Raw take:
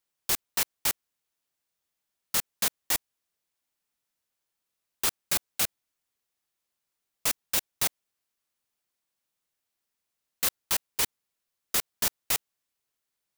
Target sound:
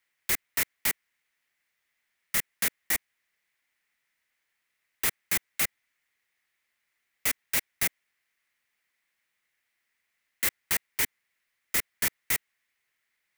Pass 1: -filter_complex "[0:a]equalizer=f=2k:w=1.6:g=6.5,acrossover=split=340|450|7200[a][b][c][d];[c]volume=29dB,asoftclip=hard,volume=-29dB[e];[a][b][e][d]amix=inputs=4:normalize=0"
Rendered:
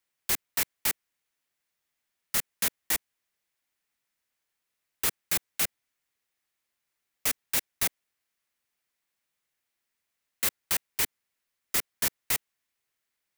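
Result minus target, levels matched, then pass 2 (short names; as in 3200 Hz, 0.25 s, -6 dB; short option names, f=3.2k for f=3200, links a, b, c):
2000 Hz band -3.5 dB
-filter_complex "[0:a]equalizer=f=2k:w=1.6:g=18.5,acrossover=split=340|450|7200[a][b][c][d];[c]volume=29dB,asoftclip=hard,volume=-29dB[e];[a][b][e][d]amix=inputs=4:normalize=0"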